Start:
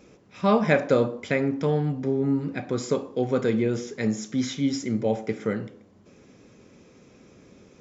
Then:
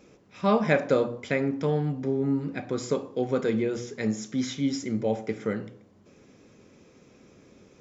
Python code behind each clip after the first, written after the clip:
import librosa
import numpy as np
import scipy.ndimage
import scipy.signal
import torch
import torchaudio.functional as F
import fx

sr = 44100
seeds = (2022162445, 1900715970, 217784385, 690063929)

y = fx.hum_notches(x, sr, base_hz=60, count=4)
y = y * 10.0 ** (-2.0 / 20.0)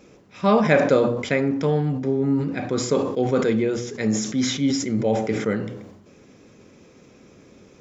y = fx.sustainer(x, sr, db_per_s=58.0)
y = y * 10.0 ** (4.5 / 20.0)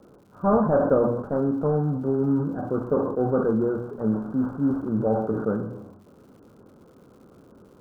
y = fx.cvsd(x, sr, bps=16000)
y = scipy.signal.sosfilt(scipy.signal.butter(16, 1500.0, 'lowpass', fs=sr, output='sos'), y)
y = fx.dmg_crackle(y, sr, seeds[0], per_s=200.0, level_db=-50.0)
y = y * 10.0 ** (-1.0 / 20.0)